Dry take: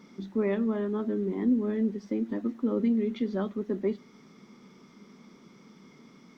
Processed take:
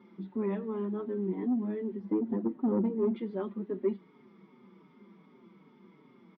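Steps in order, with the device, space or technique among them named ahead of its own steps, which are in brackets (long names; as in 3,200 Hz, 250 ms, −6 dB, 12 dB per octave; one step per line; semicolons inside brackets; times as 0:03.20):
0:01.99–0:03.16: tilt shelving filter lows +7 dB, about 1,200 Hz
barber-pole flanger into a guitar amplifier (barber-pole flanger 5.2 ms −2.6 Hz; soft clipping −20 dBFS, distortion −16 dB; loudspeaker in its box 76–3,400 Hz, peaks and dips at 190 Hz +4 dB, 360 Hz +8 dB, 940 Hz +7 dB)
level −4 dB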